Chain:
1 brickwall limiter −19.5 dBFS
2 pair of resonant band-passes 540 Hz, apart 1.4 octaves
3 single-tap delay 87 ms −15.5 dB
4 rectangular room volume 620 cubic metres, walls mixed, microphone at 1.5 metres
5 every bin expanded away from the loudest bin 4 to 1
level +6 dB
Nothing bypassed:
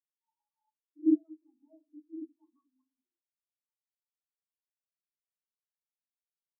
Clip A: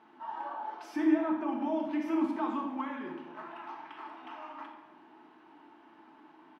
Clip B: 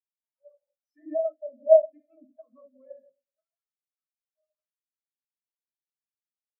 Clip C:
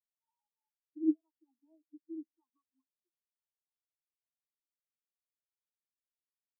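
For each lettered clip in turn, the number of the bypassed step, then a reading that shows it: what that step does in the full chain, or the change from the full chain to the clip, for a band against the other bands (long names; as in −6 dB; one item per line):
5, change in momentary loudness spread −2 LU
2, change in momentary loudness spread −3 LU
4, change in momentary loudness spread +4 LU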